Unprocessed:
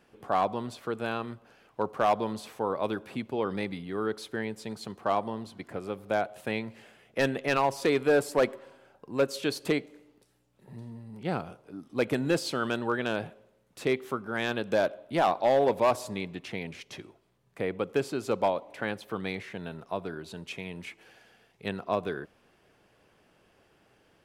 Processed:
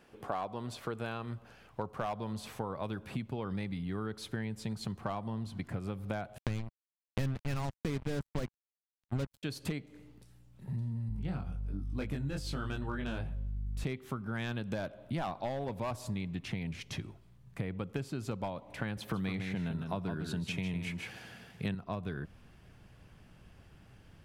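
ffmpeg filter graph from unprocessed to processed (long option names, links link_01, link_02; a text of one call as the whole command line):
ffmpeg -i in.wav -filter_complex "[0:a]asettb=1/sr,asplit=3[link_01][link_02][link_03];[link_01]atrim=end=6.384[link_04];[link_02]atrim=start=6.38:end=9.43,asetpts=PTS-STARTPTS,afade=type=in:duration=0.004:curve=qsin,afade=type=out:start_time=3.046:duration=0.004:curve=qsin,lowshelf=frequency=380:gain=11,acrusher=bits=3:mix=0:aa=0.5[link_05];[link_03]atrim=start=9.426[link_06];[link_04][link_05]acrossfade=duration=0.004:curve1=hsin:curve2=qsin[link_07];[link_07][link_06]acrossfade=duration=0.004:curve1=qsin:curve2=hsin,asettb=1/sr,asplit=3[link_08][link_09][link_10];[link_08]atrim=end=11.094[link_11];[link_09]atrim=start=11.09:end=13.84,asetpts=PTS-STARTPTS,afade=type=in:duration=0.004:curve=qsin,afade=type=out:start_time=2.746:duration=0.004:curve=qsin,flanger=delay=19.5:depth=2.1:speed=1.2,aeval=exprs='val(0)+0.00355*(sin(2*PI*50*n/s)+sin(2*PI*2*50*n/s)/2+sin(2*PI*3*50*n/s)/3+sin(2*PI*4*50*n/s)/4+sin(2*PI*5*50*n/s)/5)':channel_layout=same[link_12];[link_10]atrim=start=13.836[link_13];[link_11][link_12]acrossfade=duration=0.004:curve1=hsin:curve2=qsin[link_14];[link_14][link_13]acrossfade=duration=0.004:curve1=qsin:curve2=hsin,asettb=1/sr,asplit=3[link_15][link_16][link_17];[link_15]atrim=end=18.974[link_18];[link_16]atrim=start=18.97:end=21.75,asetpts=PTS-STARTPTS,afade=type=in:duration=0.004:curve=qsin,afade=type=out:start_time=2.776:duration=0.004:curve=qsin,highpass=100,acontrast=61,aecho=1:1:155:0.422,atrim=end_sample=122598[link_19];[link_17]atrim=start=21.746[link_20];[link_18][link_19]acrossfade=duration=0.004:curve1=hsin:curve2=qsin[link_21];[link_21][link_20]acrossfade=duration=0.004:curve1=qsin:curve2=hsin,asubboost=boost=7.5:cutoff=150,acompressor=threshold=-35dB:ratio=6,volume=1.5dB" out.wav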